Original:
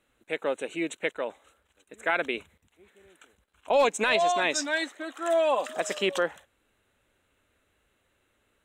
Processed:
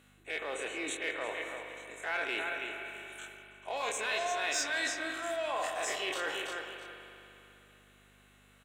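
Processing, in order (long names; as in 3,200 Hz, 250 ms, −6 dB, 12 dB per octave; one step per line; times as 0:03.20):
every bin's largest magnitude spread in time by 60 ms
repeating echo 329 ms, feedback 21%, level −16 dB
in parallel at −7 dB: gain into a clipping stage and back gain 24 dB
on the sum: comb filter 2.7 ms, depth 31%
reversed playback
downward compressor 5 to 1, threshold −32 dBFS, peak gain reduction 16 dB
reversed playback
mains hum 50 Hz, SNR 11 dB
high-pass filter 930 Hz 6 dB per octave
spring reverb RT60 3 s, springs 59 ms, chirp 60 ms, DRR 4.5 dB
level +1 dB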